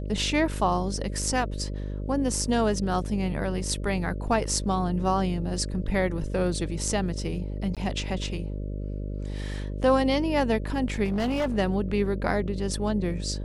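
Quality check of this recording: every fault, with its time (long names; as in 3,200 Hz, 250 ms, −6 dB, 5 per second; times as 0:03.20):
mains buzz 50 Hz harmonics 12 −32 dBFS
0:07.75–0:07.77: drop-out 17 ms
0:11.04–0:11.58: clipping −22.5 dBFS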